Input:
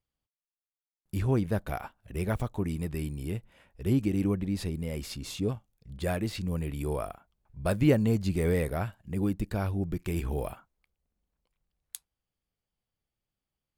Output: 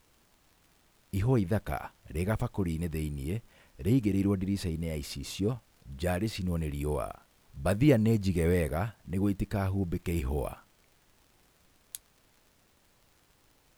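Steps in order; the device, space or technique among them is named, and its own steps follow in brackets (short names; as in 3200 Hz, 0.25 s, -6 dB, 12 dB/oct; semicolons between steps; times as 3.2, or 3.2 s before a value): vinyl LP (crackle; pink noise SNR 34 dB)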